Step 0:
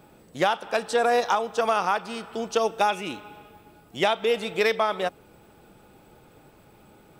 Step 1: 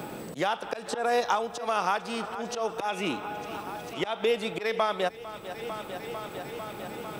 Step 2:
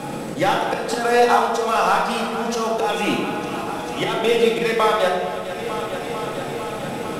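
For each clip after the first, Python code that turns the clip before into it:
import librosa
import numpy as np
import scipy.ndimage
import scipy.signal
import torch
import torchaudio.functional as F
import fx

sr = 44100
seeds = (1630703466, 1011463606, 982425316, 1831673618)

y1 = fx.auto_swell(x, sr, attack_ms=252.0)
y1 = fx.echo_thinned(y1, sr, ms=449, feedback_pct=73, hz=150.0, wet_db=-20.0)
y1 = fx.band_squash(y1, sr, depth_pct=70)
y2 = fx.cvsd(y1, sr, bps=64000)
y2 = fx.dmg_crackle(y2, sr, seeds[0], per_s=110.0, level_db=-57.0)
y2 = fx.room_shoebox(y2, sr, seeds[1], volume_m3=970.0, walls='mixed', distance_m=2.2)
y2 = F.gain(torch.from_numpy(y2), 5.5).numpy()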